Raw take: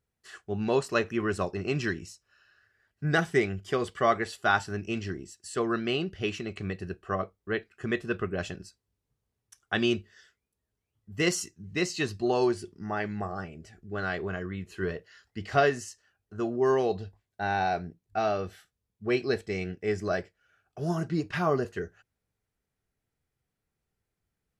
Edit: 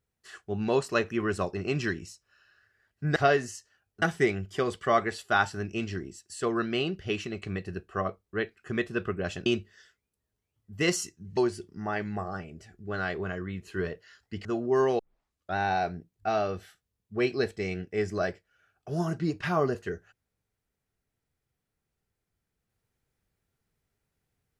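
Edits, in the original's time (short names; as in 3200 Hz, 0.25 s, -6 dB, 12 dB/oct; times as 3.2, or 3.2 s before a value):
8.6–9.85 cut
11.76–12.41 cut
15.49–16.35 move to 3.16
16.89 tape start 0.57 s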